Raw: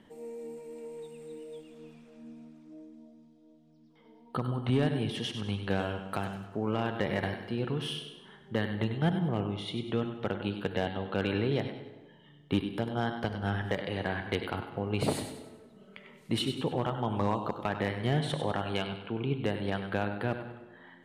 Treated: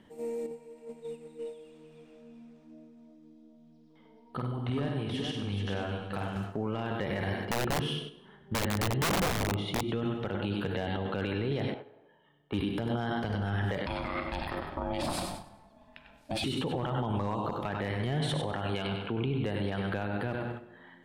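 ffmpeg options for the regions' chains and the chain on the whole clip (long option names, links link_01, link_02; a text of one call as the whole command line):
ffmpeg -i in.wav -filter_complex "[0:a]asettb=1/sr,asplit=3[link_01][link_02][link_03];[link_01]atrim=end=0.464[link_04];[link_02]atrim=start=0.46:end=6.36,asetpts=PTS-STARTPTS,afade=type=in:duration=0.004:curve=qsin,afade=type=out:start_time=5.896:duration=0.004:curve=qsin,highshelf=frequency=8300:gain=-7,acompressor=threshold=-56dB:ratio=1.5:attack=3.2:release=140:knee=1:detection=peak,aecho=1:1:50|119|426|430:0.562|0.126|0.251|0.531,atrim=end_sample=260190[link_05];[link_03]atrim=start=6.356[link_06];[link_04][link_05]acrossfade=duration=0.004:curve1=hsin:curve2=qsin[link_07];[link_07][link_06]acrossfade=duration=0.004:curve1=qsin:curve2=hsin,asettb=1/sr,asplit=3[link_08][link_09][link_10];[link_08]atrim=end=7.454[link_11];[link_09]atrim=start=7.45:end=9.89,asetpts=PTS-STARTPTS,afade=type=in:duration=0.004:curve=qsin,afade=type=out:start_time=2.436:duration=0.004:curve=qsin,highshelf=frequency=2800:gain=-11,aeval=exprs='(mod(21.1*val(0)+1,2)-1)/21.1':channel_layout=same[link_12];[link_10]atrim=start=9.886[link_13];[link_11][link_12]acrossfade=duration=0.004:curve1=hsin:curve2=qsin[link_14];[link_14][link_13]acrossfade=duration=0.004:curve1=qsin:curve2=hsin,asettb=1/sr,asplit=3[link_15][link_16][link_17];[link_15]atrim=end=11.744[link_18];[link_16]atrim=start=11.74:end=12.54,asetpts=PTS-STARTPTS,afade=type=in:duration=0.004:curve=qsin,afade=type=out:start_time=0.796:duration=0.004:curve=qsin,acrossover=split=460 2100:gain=0.2 1 0.2[link_19][link_20][link_21];[link_19][link_20][link_21]amix=inputs=3:normalize=0,bandreject=frequency=2000:width=8.2[link_22];[link_17]atrim=start=12.536[link_23];[link_18][link_22]acrossfade=duration=0.004:curve1=hsin:curve2=qsin[link_24];[link_24][link_23]acrossfade=duration=0.004:curve1=qsin:curve2=hsin,asettb=1/sr,asplit=3[link_25][link_26][link_27];[link_25]atrim=end=13.864[link_28];[link_26]atrim=start=13.86:end=16.44,asetpts=PTS-STARTPTS,afade=type=in:duration=0.004:curve=qsin,afade=type=out:start_time=2.576:duration=0.004:curve=qsin,equalizer=frequency=4700:width=6.5:gain=6,aeval=exprs='val(0)*sin(2*PI*440*n/s)':channel_layout=same[link_29];[link_27]atrim=start=16.436[link_30];[link_28][link_29]acrossfade=duration=0.004:curve1=hsin:curve2=qsin[link_31];[link_31][link_30]acrossfade=duration=0.004:curve1=qsin:curve2=hsin,agate=range=-7dB:threshold=-46dB:ratio=16:detection=peak,equalizer=frequency=70:width=1.5:gain=4.5,alimiter=level_in=5.5dB:limit=-24dB:level=0:latency=1:release=26,volume=-5.5dB,volume=6.5dB" out.wav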